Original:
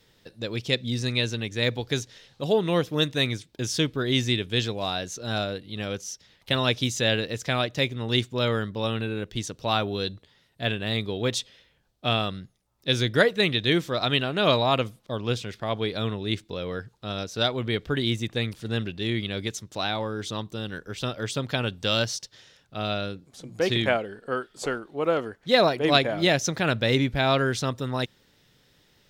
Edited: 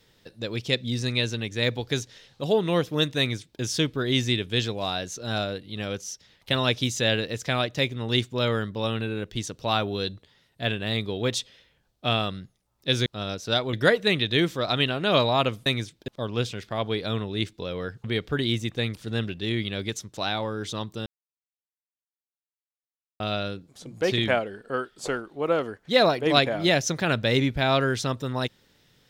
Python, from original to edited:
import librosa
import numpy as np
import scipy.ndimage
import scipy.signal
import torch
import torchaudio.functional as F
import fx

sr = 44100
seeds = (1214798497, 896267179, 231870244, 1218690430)

y = fx.edit(x, sr, fx.duplicate(start_s=3.19, length_s=0.42, to_s=14.99),
    fx.move(start_s=16.95, length_s=0.67, to_s=13.06),
    fx.silence(start_s=20.64, length_s=2.14), tone=tone)